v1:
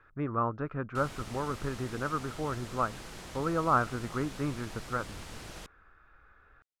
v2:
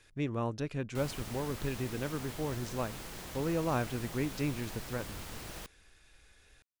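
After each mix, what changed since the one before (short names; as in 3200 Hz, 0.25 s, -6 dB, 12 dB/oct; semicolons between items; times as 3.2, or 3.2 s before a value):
speech: remove synth low-pass 1300 Hz, resonance Q 7; master: remove LPF 9300 Hz 12 dB/oct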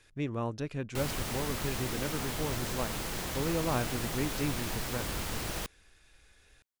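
background +8.5 dB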